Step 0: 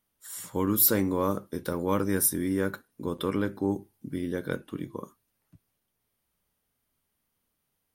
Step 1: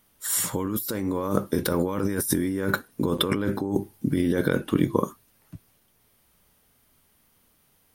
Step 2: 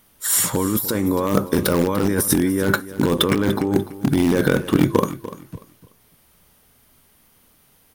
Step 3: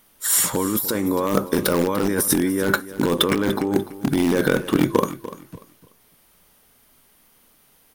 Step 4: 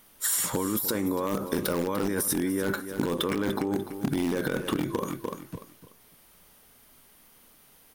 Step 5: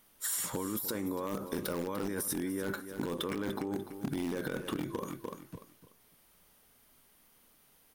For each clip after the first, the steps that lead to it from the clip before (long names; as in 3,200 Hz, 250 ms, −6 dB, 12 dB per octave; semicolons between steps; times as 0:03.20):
compressor whose output falls as the input rises −34 dBFS, ratio −1; level +9 dB
in parallel at −11 dB: wrap-around overflow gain 16.5 dB; on the sum: repeating echo 294 ms, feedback 26%, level −15 dB; level +5 dB
parametric band 83 Hz −8 dB 2 octaves
brickwall limiter −10.5 dBFS, peak gain reduction 8.5 dB; downward compressor, threshold −24 dBFS, peak gain reduction 8 dB
hard clipping −17 dBFS, distortion −31 dB; level −7.5 dB